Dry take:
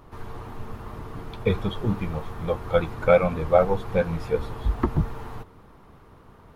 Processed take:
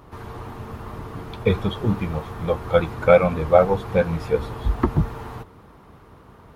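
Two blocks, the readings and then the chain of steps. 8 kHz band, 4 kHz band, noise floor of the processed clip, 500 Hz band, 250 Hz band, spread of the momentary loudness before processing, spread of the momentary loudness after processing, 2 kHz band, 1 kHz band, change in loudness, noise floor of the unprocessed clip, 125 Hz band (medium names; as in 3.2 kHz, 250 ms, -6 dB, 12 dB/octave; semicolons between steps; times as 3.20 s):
no reading, +3.5 dB, -49 dBFS, +3.5 dB, +3.5 dB, 19 LU, 19 LU, +3.5 dB, +3.5 dB, +3.5 dB, -51 dBFS, +3.5 dB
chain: high-pass 40 Hz; trim +3.5 dB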